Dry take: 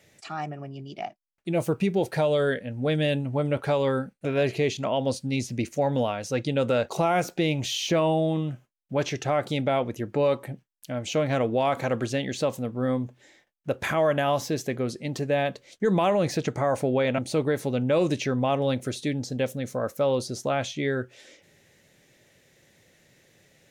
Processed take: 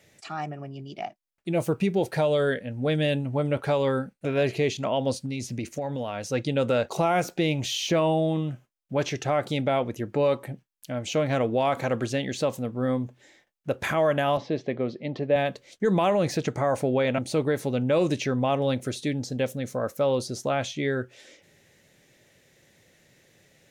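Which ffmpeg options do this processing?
-filter_complex "[0:a]asettb=1/sr,asplit=3[s0][s1][s2];[s0]atrim=end=5.254[s3];[s1]atrim=start=5.25:end=6.28,asetpts=PTS-STARTPTS,afade=t=in:d=0.004:c=qsin,afade=t=out:st=1.026:d=0.004:c=qsin,acompressor=threshold=0.0501:ratio=10:attack=3.2:release=140:knee=1:detection=peak[s4];[s2]atrim=start=6.276[s5];[s3][s4]acrossfade=d=0.004:c1=hsin:c2=qsin[s6];[s6][s5]acrossfade=d=0.004:c1=qsin:c2=hsin,asettb=1/sr,asplit=3[s7][s8][s9];[s7]atrim=end=14.374[s10];[s8]atrim=start=14.37:end=15.36,asetpts=PTS-STARTPTS,afade=t=in:d=0.004:c=qsin,afade=t=out:st=0.986:d=0.004:c=qsin,highpass=130,equalizer=f=600:t=q:w=4:g=4,equalizer=f=1500:t=q:w=4:g=-7,equalizer=f=2700:t=q:w=4:g=-3,lowpass=f=3700:w=0.5412,lowpass=f=3700:w=1.3066[s11];[s9]atrim=start=15.356[s12];[s10][s11]acrossfade=d=0.004:c1=hsin:c2=qsin[s13];[s13][s12]acrossfade=d=0.004:c1=qsin:c2=hsin"

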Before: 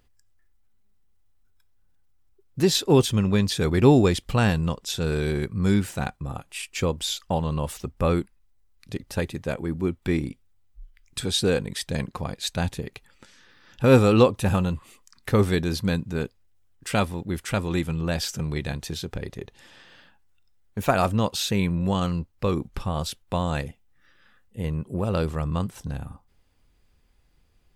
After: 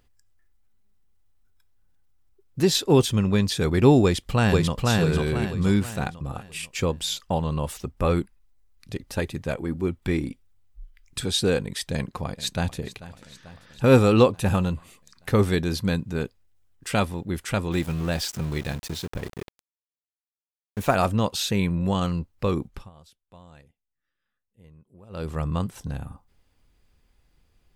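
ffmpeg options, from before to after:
-filter_complex "[0:a]asplit=2[s0][s1];[s1]afade=t=in:st=4.03:d=0.01,afade=t=out:st=4.8:d=0.01,aecho=0:1:490|980|1470|1960|2450:0.841395|0.336558|0.134623|0.0538493|0.0215397[s2];[s0][s2]amix=inputs=2:normalize=0,asplit=3[s3][s4][s5];[s3]afade=t=out:st=7.98:d=0.02[s6];[s4]aphaser=in_gain=1:out_gain=1:delay=4.3:decay=0.25:speed=1.7:type=triangular,afade=t=in:st=7.98:d=0.02,afade=t=out:st=11.23:d=0.02[s7];[s5]afade=t=in:st=11.23:d=0.02[s8];[s6][s7][s8]amix=inputs=3:normalize=0,asplit=2[s9][s10];[s10]afade=t=in:st=11.93:d=0.01,afade=t=out:st=12.78:d=0.01,aecho=0:1:440|880|1320|1760|2200|2640|3080:0.149624|0.0972553|0.063216|0.0410904|0.0267087|0.0173607|0.0112844[s11];[s9][s11]amix=inputs=2:normalize=0,asettb=1/sr,asplit=3[s12][s13][s14];[s12]atrim=end=17.724[s15];[s13]atrim=start=17.72:end=20.95,asetpts=PTS-STARTPTS,afade=t=in:d=0.004:c=qsin,afade=t=out:st=3.226:d=0.004:c=qsin,aeval=exprs='val(0)*gte(abs(val(0)),0.015)':c=same[s16];[s14]atrim=start=20.946[s17];[s15][s16]acrossfade=d=0.004:c1=hsin:c2=qsin[s18];[s18][s17]acrossfade=d=0.004:c1=qsin:c2=hsin,asplit=3[s19][s20][s21];[s19]atrim=end=22.9,asetpts=PTS-STARTPTS,afade=t=out:st=22.6:d=0.3:silence=0.0668344[s22];[s20]atrim=start=22.9:end=25.09,asetpts=PTS-STARTPTS,volume=0.0668[s23];[s21]atrim=start=25.09,asetpts=PTS-STARTPTS,afade=t=in:d=0.3:silence=0.0668344[s24];[s22][s23][s24]concat=n=3:v=0:a=1"

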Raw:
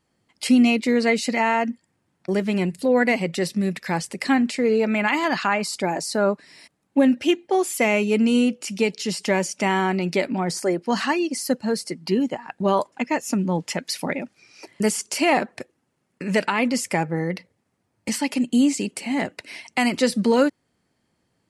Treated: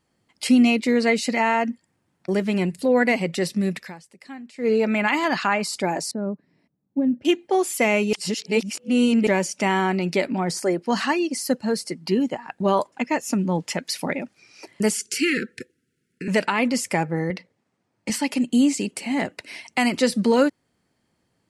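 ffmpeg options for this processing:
-filter_complex "[0:a]asettb=1/sr,asplit=3[s0][s1][s2];[s0]atrim=end=6.114[s3];[s1]atrim=start=6.11:end=7.25,asetpts=PTS-STARTPTS,afade=t=in:d=0.004:c=qsin,afade=t=out:st=1.136:d=0.004:c=qsin,bandpass=f=160:t=q:w=1.1[s4];[s2]atrim=start=7.246[s5];[s3][s4]acrossfade=d=0.004:c1=hsin:c2=qsin[s6];[s6][s5]acrossfade=d=0.004:c1=qsin:c2=hsin,asettb=1/sr,asplit=3[s7][s8][s9];[s7]atrim=end=14.944[s10];[s8]atrim=start=14.94:end=16.28,asetpts=PTS-STARTPTS,afade=t=in:d=0.004:c=qsin,afade=t=out:st=1.336:d=0.004:c=qsin,asuperstop=centerf=820:order=20:qfactor=0.95[s11];[s9]atrim=start=16.276[s12];[s10][s11]acrossfade=d=0.004:c1=hsin:c2=qsin[s13];[s13][s12]acrossfade=d=0.004:c1=qsin:c2=hsin,asettb=1/sr,asplit=3[s14][s15][s16];[s14]atrim=end=17.304[s17];[s15]atrim=start=17.3:end=18.1,asetpts=PTS-STARTPTS,afade=t=in:d=0.004:c=qsin,afade=t=out:st=0.796:d=0.004:c=qsin,highpass=130,lowpass=7300[s18];[s16]atrim=start=18.096[s19];[s17][s18]acrossfade=d=0.004:c1=hsin:c2=qsin[s20];[s20][s19]acrossfade=d=0.004:c1=qsin:c2=hsin,asplit=5[s21][s22][s23][s24][s25];[s21]atrim=end=3.97,asetpts=PTS-STARTPTS,afade=t=out:st=3.81:d=0.16:c=qua:silence=0.112202[s26];[s22]atrim=start=3.97:end=4.52,asetpts=PTS-STARTPTS,volume=0.112[s27];[s23]atrim=start=4.52:end=8.132,asetpts=PTS-STARTPTS,afade=t=in:d=0.16:c=qua:silence=0.112202[s28];[s24]atrim=start=8.128:end=9.272,asetpts=PTS-STARTPTS,areverse[s29];[s25]atrim=start=9.268[s30];[s26][s27][s28]concat=n=3:v=0:a=1[s31];[s31][s29]acrossfade=d=0.004:c1=hsin:c2=hsin[s32];[s32][s30]acrossfade=d=0.004:c1=hsin:c2=hsin"

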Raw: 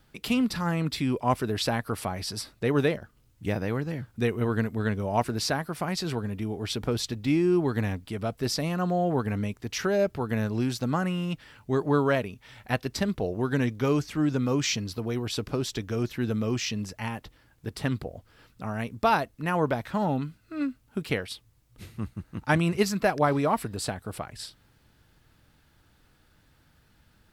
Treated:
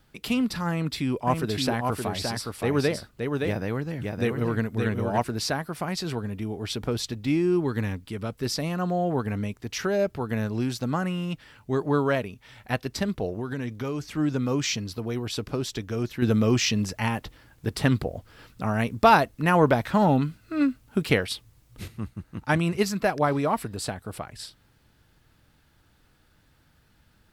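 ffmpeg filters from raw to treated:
-filter_complex "[0:a]asettb=1/sr,asplit=3[s0][s1][s2];[s0]atrim=end=0.704[s3];[s1]atrim=start=0.7:end=5.19,asetpts=PTS-STARTPTS,afade=t=in:d=0.004:c=qsin,afade=t=out:st=4.486:d=0.004:c=qsin,aecho=1:1:569:0.631,atrim=end_sample=198009[s4];[s2]atrim=start=5.186[s5];[s3][s4]acrossfade=d=0.004:c1=hsin:c2=qsin[s6];[s6][s5]acrossfade=d=0.004:c1=qsin:c2=hsin,asettb=1/sr,asplit=3[s7][s8][s9];[s7]atrim=end=7.574[s10];[s8]atrim=start=7.57:end=8.56,asetpts=PTS-STARTPTS,afade=t=in:d=0.004:c=qsin,afade=t=out:st=0.986:d=0.004:c=qsin,equalizer=f=690:w=5:g=-9[s11];[s9]atrim=start=8.556[s12];[s10][s11]acrossfade=d=0.004:c1=hsin:c2=qsin[s13];[s13][s12]acrossfade=d=0.004:c1=qsin:c2=hsin,asettb=1/sr,asplit=3[s14][s15][s16];[s14]atrim=end=13.294[s17];[s15]atrim=start=13.29:end=14.17,asetpts=PTS-STARTPTS,afade=t=in:d=0.004:c=qsin,afade=t=out:st=0.876:d=0.004:c=qsin,acompressor=threshold=0.0447:ratio=4:attack=3.2:release=140:knee=1:detection=peak[s18];[s16]atrim=start=14.166[s19];[s17][s18]acrossfade=d=0.004:c1=hsin:c2=qsin[s20];[s20][s19]acrossfade=d=0.004:c1=qsin:c2=hsin,asettb=1/sr,asplit=3[s21][s22][s23];[s21]atrim=end=16.224[s24];[s22]atrim=start=16.22:end=21.88,asetpts=PTS-STARTPTS,afade=t=in:d=0.004:c=qsin,afade=t=out:st=5.656:d=0.004:c=qsin,acontrast=68[s25];[s23]atrim=start=21.876[s26];[s24][s25]acrossfade=d=0.004:c1=hsin:c2=qsin[s27];[s27][s26]acrossfade=d=0.004:c1=qsin:c2=hsin"

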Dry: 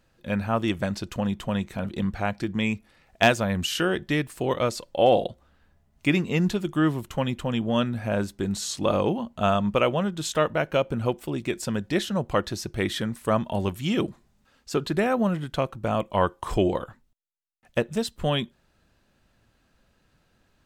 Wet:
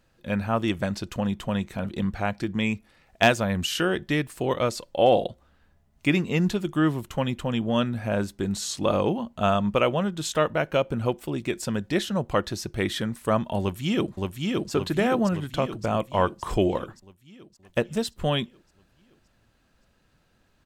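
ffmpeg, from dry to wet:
-filter_complex "[0:a]asplit=2[s0][s1];[s1]afade=t=in:st=13.6:d=0.01,afade=t=out:st=14.71:d=0.01,aecho=0:1:570|1140|1710|2280|2850|3420|3990|4560|5130:0.794328|0.476597|0.285958|0.171575|0.102945|0.061767|0.0370602|0.0222361|0.0133417[s2];[s0][s2]amix=inputs=2:normalize=0"

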